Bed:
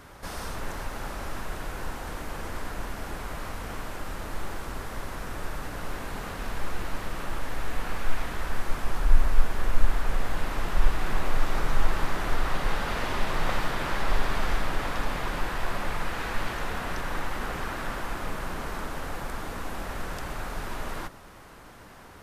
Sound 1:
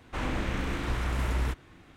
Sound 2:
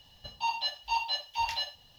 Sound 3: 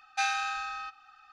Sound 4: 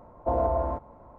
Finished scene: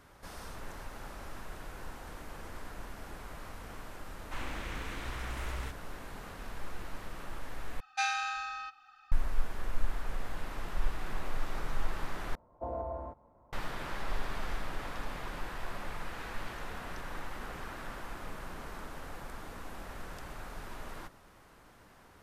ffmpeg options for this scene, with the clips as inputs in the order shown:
ffmpeg -i bed.wav -i cue0.wav -i cue1.wav -i cue2.wav -i cue3.wav -filter_complex "[0:a]volume=-10dB[link_01];[1:a]equalizer=frequency=170:width=0.3:gain=-9.5[link_02];[link_01]asplit=3[link_03][link_04][link_05];[link_03]atrim=end=7.804[link_06];[3:a]atrim=end=1.32,asetpts=PTS-STARTPTS,volume=-2.5dB[link_07];[link_04]atrim=start=9.116:end=12.354[link_08];[4:a]atrim=end=1.18,asetpts=PTS-STARTPTS,volume=-12.5dB[link_09];[link_05]atrim=start=13.526[link_10];[link_02]atrim=end=1.96,asetpts=PTS-STARTPTS,volume=-5dB,afade=type=in:duration=0.004:curve=hsin,afade=type=out:start_time=1.956:duration=0.004:curve=hsin,adelay=4180[link_11];[link_06][link_07]acrossfade=duration=0.004:curve1=hsin:curve2=hsin[link_12];[link_12][link_08]acrossfade=duration=0.004:curve1=hsin:curve2=hsin[link_13];[link_13][link_09]acrossfade=duration=0.004:curve1=hsin:curve2=hsin[link_14];[link_14][link_10]acrossfade=duration=0.004:curve1=hsin:curve2=hsin[link_15];[link_15][link_11]amix=inputs=2:normalize=0" out.wav

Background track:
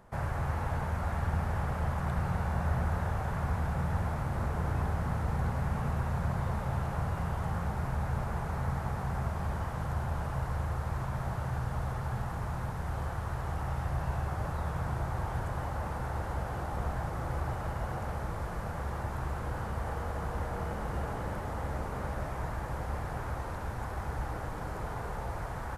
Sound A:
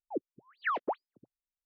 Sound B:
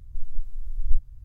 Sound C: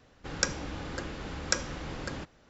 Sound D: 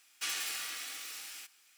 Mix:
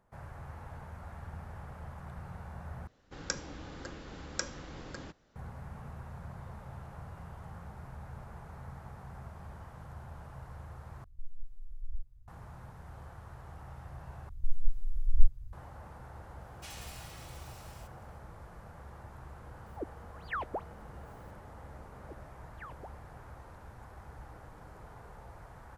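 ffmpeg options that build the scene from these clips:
ffmpeg -i bed.wav -i cue0.wav -i cue1.wav -i cue2.wav -i cue3.wav -filter_complex "[2:a]asplit=2[link_01][link_02];[1:a]asplit=2[link_03][link_04];[0:a]volume=-13.5dB[link_05];[3:a]equalizer=frequency=2500:width_type=o:width=0.62:gain=-3[link_06];[link_01]alimiter=limit=-14.5dB:level=0:latency=1:release=71[link_07];[link_03]acompressor=mode=upward:threshold=-44dB:ratio=2.5:attack=3.2:release=140:knee=2.83:detection=peak[link_08];[link_05]asplit=4[link_09][link_10][link_11][link_12];[link_09]atrim=end=2.874[link_13];[link_06]atrim=end=2.49,asetpts=PTS-STARTPTS,volume=-7dB[link_14];[link_10]atrim=start=5.356:end=11.044[link_15];[link_07]atrim=end=1.24,asetpts=PTS-STARTPTS,volume=-13dB[link_16];[link_11]atrim=start=12.276:end=14.294[link_17];[link_02]atrim=end=1.24,asetpts=PTS-STARTPTS,volume=-1dB[link_18];[link_12]atrim=start=15.526[link_19];[4:a]atrim=end=1.77,asetpts=PTS-STARTPTS,volume=-12.5dB,afade=type=in:duration=0.004:curve=hsin,afade=type=out:start_time=1.766:duration=0.004:curve=hsin,adelay=16410[link_20];[link_08]atrim=end=1.65,asetpts=PTS-STARTPTS,volume=-5dB,afade=type=in:duration=0.004:curve=hsin,afade=type=out:start_time=1.646:duration=0.004:curve=hsin,adelay=19660[link_21];[link_04]atrim=end=1.65,asetpts=PTS-STARTPTS,volume=-17dB,afade=type=in:duration=0.004:curve=hsin,afade=type=out:start_time=1.646:duration=0.004:curve=hsin,adelay=21950[link_22];[link_13][link_14]acrossfade=duration=0.004:curve1=hsin:curve2=hsin[link_23];[link_23][link_15]acrossfade=duration=0.004:curve1=hsin:curve2=hsin[link_24];[link_24][link_16]acrossfade=duration=0.004:curve1=hsin:curve2=hsin[link_25];[link_25][link_17]acrossfade=duration=0.004:curve1=hsin:curve2=hsin[link_26];[link_26][link_18]acrossfade=duration=0.004:curve1=hsin:curve2=hsin[link_27];[link_27][link_19]acrossfade=duration=0.004:curve1=hsin:curve2=hsin[link_28];[link_28][link_20][link_21][link_22]amix=inputs=4:normalize=0" out.wav

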